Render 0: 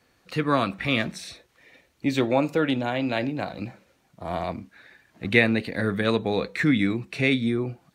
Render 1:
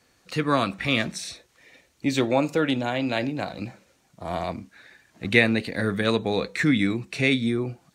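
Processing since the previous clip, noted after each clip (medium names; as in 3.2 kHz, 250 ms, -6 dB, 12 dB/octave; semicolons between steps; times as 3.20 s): peaking EQ 7.1 kHz +7 dB 1.3 oct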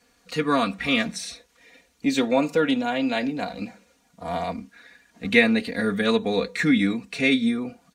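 comb 4.2 ms, depth 79%; trim -1.5 dB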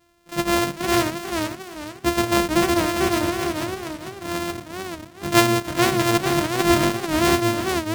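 sorted samples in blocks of 128 samples; modulated delay 444 ms, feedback 33%, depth 172 cents, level -5 dB; trim +1 dB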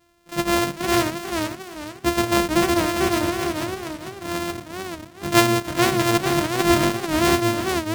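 no audible change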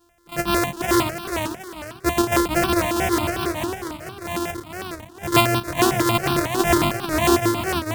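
stepped phaser 11 Hz 580–2000 Hz; trim +3.5 dB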